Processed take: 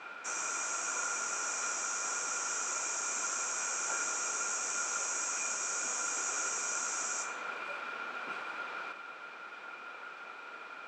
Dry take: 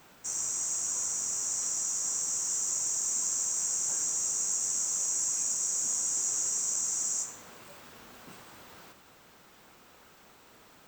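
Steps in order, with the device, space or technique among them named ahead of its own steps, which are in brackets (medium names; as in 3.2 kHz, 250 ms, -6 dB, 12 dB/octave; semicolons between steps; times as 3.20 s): tin-can telephone (band-pass 430–3100 Hz; small resonant body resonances 1.4/2.4 kHz, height 16 dB, ringing for 40 ms); trim +8.5 dB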